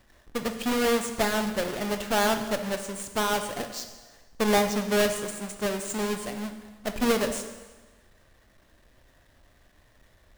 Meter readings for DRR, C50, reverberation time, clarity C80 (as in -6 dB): 6.5 dB, 8.5 dB, 1.3 s, 10.0 dB